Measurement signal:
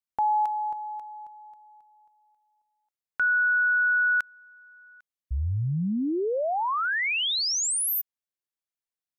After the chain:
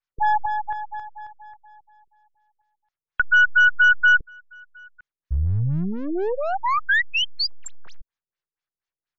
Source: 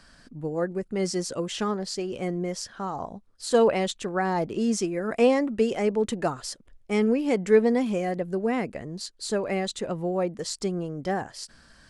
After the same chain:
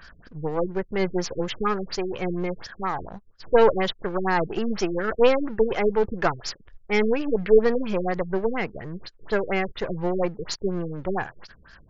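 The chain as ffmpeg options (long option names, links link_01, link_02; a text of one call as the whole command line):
ffmpeg -i in.wav -af "aeval=exprs='if(lt(val(0),0),0.447*val(0),val(0))':channel_layout=same,equalizer=frequency=250:width_type=o:width=0.67:gain=-10,equalizer=frequency=630:width_type=o:width=0.67:gain=-4,equalizer=frequency=1600:width_type=o:width=0.67:gain=4,equalizer=frequency=10000:width_type=o:width=0.67:gain=-6,afftfilt=real='re*lt(b*sr/1024,460*pow(7500/460,0.5+0.5*sin(2*PI*4.2*pts/sr)))':imag='im*lt(b*sr/1024,460*pow(7500/460,0.5+0.5*sin(2*PI*4.2*pts/sr)))':win_size=1024:overlap=0.75,volume=8.5dB" out.wav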